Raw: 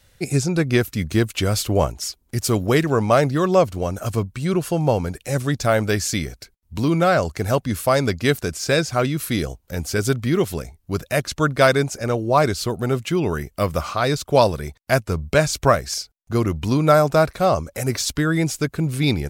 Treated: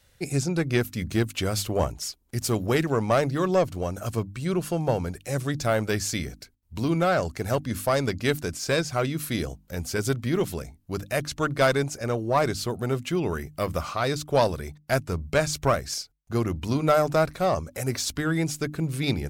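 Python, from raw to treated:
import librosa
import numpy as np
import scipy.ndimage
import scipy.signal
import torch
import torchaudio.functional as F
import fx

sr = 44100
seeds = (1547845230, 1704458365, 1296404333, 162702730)

y = fx.diode_clip(x, sr, knee_db=-7.5)
y = fx.hum_notches(y, sr, base_hz=50, count=6)
y = y * 10.0 ** (-4.5 / 20.0)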